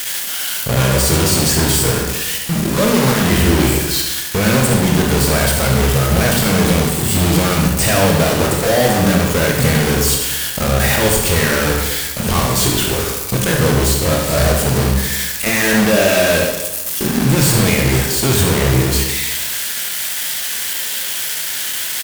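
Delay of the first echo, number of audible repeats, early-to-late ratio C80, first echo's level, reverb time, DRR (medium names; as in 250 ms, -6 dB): 71 ms, 1, 5.0 dB, -7.0 dB, 1.0 s, -0.5 dB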